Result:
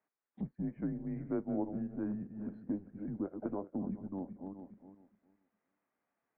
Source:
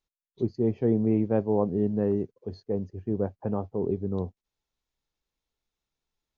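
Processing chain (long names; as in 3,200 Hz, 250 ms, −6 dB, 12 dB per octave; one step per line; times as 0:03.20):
feedback delay that plays each chunk backwards 206 ms, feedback 40%, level −12 dB
downward compressor 2.5 to 1, threshold −43 dBFS, peak gain reduction 16 dB
single-sideband voice off tune −190 Hz 420–2,200 Hz
level +8 dB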